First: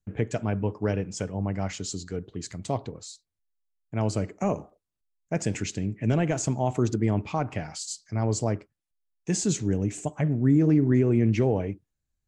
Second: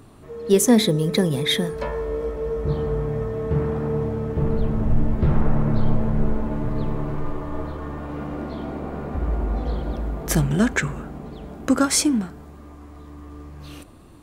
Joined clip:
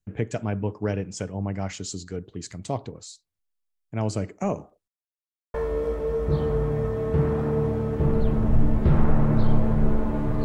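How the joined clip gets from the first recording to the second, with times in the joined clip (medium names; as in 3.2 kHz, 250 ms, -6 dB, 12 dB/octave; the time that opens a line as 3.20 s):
first
4.88–5.54 s: mute
5.54 s: go over to second from 1.91 s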